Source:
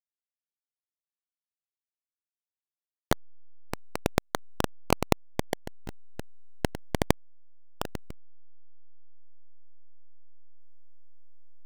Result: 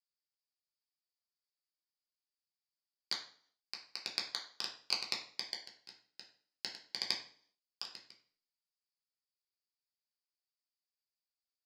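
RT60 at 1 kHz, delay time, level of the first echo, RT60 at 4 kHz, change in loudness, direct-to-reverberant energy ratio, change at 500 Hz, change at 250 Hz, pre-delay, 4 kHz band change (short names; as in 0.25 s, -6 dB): 0.50 s, none, none, 0.45 s, -7.5 dB, -2.5 dB, -25.0 dB, -28.0 dB, 3 ms, +3.0 dB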